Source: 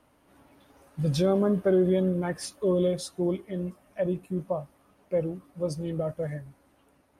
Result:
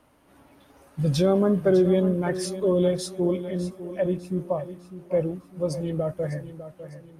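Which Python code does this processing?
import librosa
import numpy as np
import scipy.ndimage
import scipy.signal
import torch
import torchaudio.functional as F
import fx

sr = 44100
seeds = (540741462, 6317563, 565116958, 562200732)

y = fx.echo_feedback(x, sr, ms=602, feedback_pct=42, wet_db=-13)
y = F.gain(torch.from_numpy(y), 3.0).numpy()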